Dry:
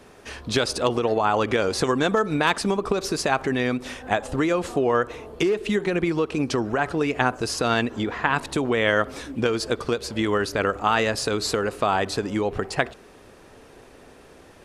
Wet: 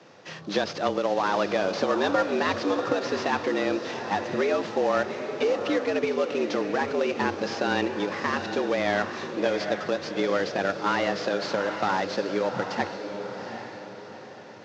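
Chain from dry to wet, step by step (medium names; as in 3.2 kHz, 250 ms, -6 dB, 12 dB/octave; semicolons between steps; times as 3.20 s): CVSD coder 32 kbps; frequency shift +92 Hz; echo that smears into a reverb 782 ms, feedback 42%, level -7.5 dB; trim -2.5 dB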